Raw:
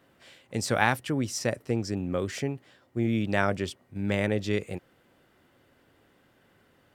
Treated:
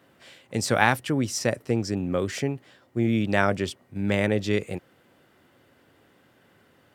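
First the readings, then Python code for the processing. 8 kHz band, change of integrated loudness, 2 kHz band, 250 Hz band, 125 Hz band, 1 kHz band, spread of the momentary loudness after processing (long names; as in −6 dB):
+3.5 dB, +3.5 dB, +3.5 dB, +3.5 dB, +3.0 dB, +3.5 dB, 11 LU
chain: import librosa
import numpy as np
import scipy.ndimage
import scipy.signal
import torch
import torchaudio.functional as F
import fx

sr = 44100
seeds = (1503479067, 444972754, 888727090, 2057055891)

y = scipy.signal.sosfilt(scipy.signal.butter(2, 74.0, 'highpass', fs=sr, output='sos'), x)
y = y * librosa.db_to_amplitude(3.5)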